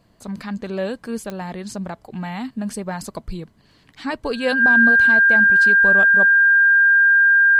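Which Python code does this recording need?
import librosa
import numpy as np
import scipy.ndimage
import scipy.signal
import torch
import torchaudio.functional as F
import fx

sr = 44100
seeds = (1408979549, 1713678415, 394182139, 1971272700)

y = fx.fix_declick_ar(x, sr, threshold=10.0)
y = fx.notch(y, sr, hz=1600.0, q=30.0)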